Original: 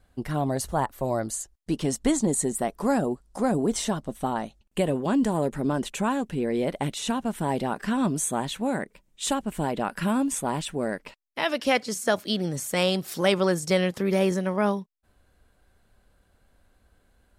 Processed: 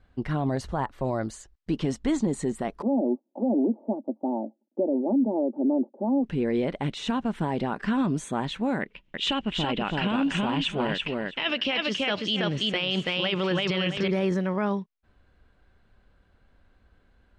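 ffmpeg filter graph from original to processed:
ffmpeg -i in.wav -filter_complex "[0:a]asettb=1/sr,asplit=3[link_01][link_02][link_03];[link_01]atrim=end=2.824[link_04];[link_02]atrim=start=2.82:end=6.24,asetpts=PTS-STARTPTS,afade=type=in:duration=0.004:curve=qsin,afade=type=out:start_time=3.416:duration=0.004:curve=qsin,asuperpass=centerf=420:order=12:qfactor=0.71,aecho=1:1:3.4:0.6,atrim=end_sample=150822[link_05];[link_03]atrim=start=6.236[link_06];[link_04][link_05]acrossfade=duration=0.004:curve1=hsin:curve2=qsin[link_07];[link_07][link_06]acrossfade=duration=0.004:curve1=qsin:curve2=hsin,asettb=1/sr,asplit=3[link_08][link_09][link_10];[link_08]atrim=end=8.814[link_11];[link_09]atrim=start=8.81:end=14.08,asetpts=PTS-STARTPTS,afade=type=in:duration=0.004:curve=qsin,afade=type=out:start_time=5.266:duration=0.004:curve=qsin,lowpass=6600,equalizer=frequency=2900:width=2.1:gain=14,aecho=1:1:331|662|993:0.668|0.107|0.0171,atrim=end_sample=232407[link_12];[link_10]atrim=start=14.076[link_13];[link_11][link_12]acrossfade=duration=0.004:curve1=hsin:curve2=qsin[link_14];[link_14][link_13]acrossfade=duration=0.004:curve1=qsin:curve2=hsin,lowpass=3500,equalizer=frequency=640:width_type=o:width=0.9:gain=-3.5,alimiter=limit=-19dB:level=0:latency=1:release=33,volume=2dB" out.wav

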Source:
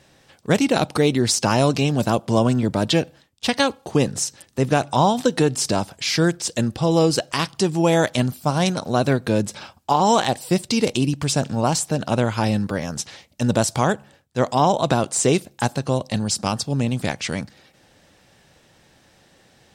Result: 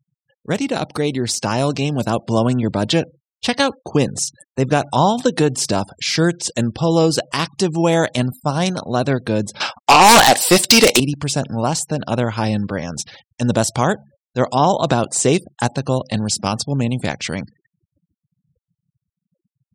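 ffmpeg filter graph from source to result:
ffmpeg -i in.wav -filter_complex "[0:a]asettb=1/sr,asplit=3[link_01][link_02][link_03];[link_01]atrim=end=9.604[link_04];[link_02]atrim=start=9.6:end=11,asetpts=PTS-STARTPTS,afade=type=in:duration=0.004:curve=qsin,afade=type=out:start_time=1.396:duration=0.004:curve=qsin,highpass=frequency=880:poles=1,aeval=exprs='0.596*sin(PI/2*5.01*val(0)/0.596)':channel_layout=same[link_05];[link_03]atrim=start=10.996[link_06];[link_04][link_05]acrossfade=duration=0.004:curve1=hsin:curve2=qsin[link_07];[link_07][link_06]acrossfade=duration=0.004:curve1=qsin:curve2=hsin,afftfilt=real='re*gte(hypot(re,im),0.0112)':imag='im*gte(hypot(re,im),0.0112)':win_size=1024:overlap=0.75,dynaudnorm=framelen=130:gausssize=31:maxgain=11.5dB,volume=-2.5dB" out.wav

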